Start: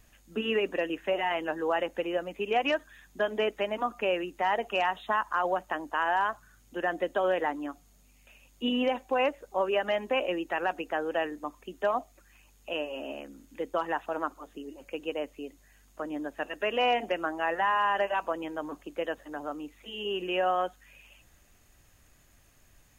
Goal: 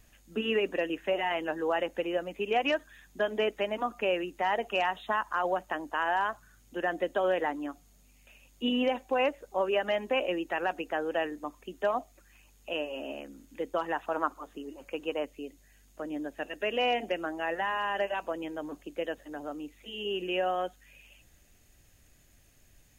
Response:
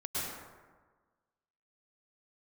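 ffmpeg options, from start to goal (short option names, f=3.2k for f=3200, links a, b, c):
-af "asetnsamples=n=441:p=0,asendcmd='14.03 equalizer g 3.5;15.25 equalizer g -7.5',equalizer=f=1.1k:w=1.4:g=-2.5"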